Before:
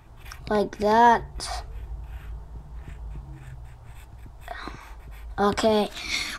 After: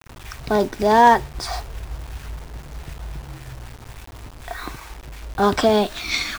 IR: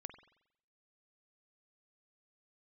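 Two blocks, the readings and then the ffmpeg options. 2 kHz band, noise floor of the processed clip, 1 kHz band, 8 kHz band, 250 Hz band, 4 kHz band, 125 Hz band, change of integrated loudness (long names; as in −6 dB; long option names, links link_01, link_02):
+4.5 dB, −41 dBFS, +4.5 dB, +3.5 dB, +4.5 dB, +4.5 dB, +4.5 dB, +4.5 dB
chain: -filter_complex "[0:a]asplit=2[link_01][link_02];[link_02]acrusher=bits=2:mode=log:mix=0:aa=0.000001,volume=-8dB[link_03];[link_01][link_03]amix=inputs=2:normalize=0,lowpass=7300,acrusher=bits=6:mix=0:aa=0.000001,volume=1.5dB"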